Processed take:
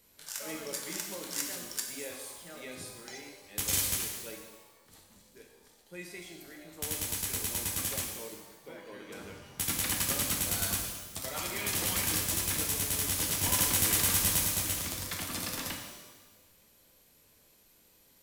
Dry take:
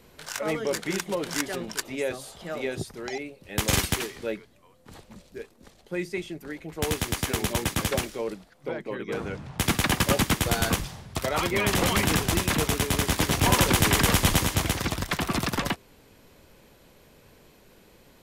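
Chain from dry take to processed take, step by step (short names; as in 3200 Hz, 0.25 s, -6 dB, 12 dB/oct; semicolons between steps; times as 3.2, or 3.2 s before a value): pre-emphasis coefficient 0.8; shimmer reverb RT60 1.2 s, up +12 st, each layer -8 dB, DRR 1 dB; gain -3 dB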